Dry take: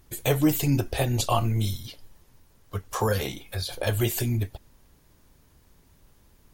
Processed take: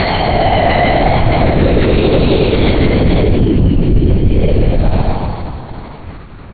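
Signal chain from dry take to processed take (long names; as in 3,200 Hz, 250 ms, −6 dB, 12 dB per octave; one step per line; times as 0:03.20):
extreme stretch with random phases 5.8×, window 0.25 s, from 0:03.69
pitch vibrato 0.98 Hz 66 cents
on a send: single-tap delay 618 ms −13.5 dB
on the sum: asymmetric clip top −21 dBFS
linear-prediction vocoder at 8 kHz whisper
formants moved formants +4 semitones
reversed playback
downward compressor 6 to 1, threshold −32 dBFS, peak gain reduction 12.5 dB
reversed playback
low-pass filter 2,600 Hz 12 dB per octave
hum removal 67.87 Hz, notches 34
boost into a limiter +29 dB
every ending faded ahead of time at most 480 dB per second
level −1 dB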